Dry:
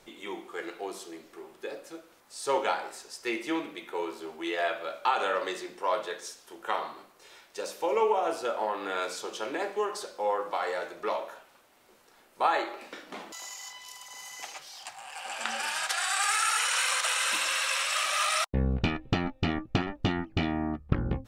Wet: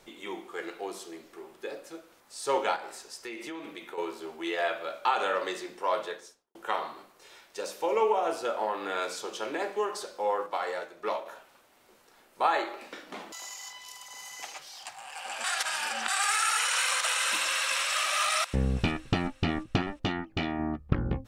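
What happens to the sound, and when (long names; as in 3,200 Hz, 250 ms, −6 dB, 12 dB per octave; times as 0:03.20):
0:02.76–0:03.98: downward compressor, threshold −36 dBFS
0:06.02–0:06.55: fade out and dull
0:10.46–0:11.26: expander for the loud parts, over −41 dBFS
0:15.44–0:16.08: reverse
0:17.35–0:17.83: delay throw 360 ms, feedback 55%, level −12 dB
0:19.98–0:20.59: low-shelf EQ 260 Hz −6 dB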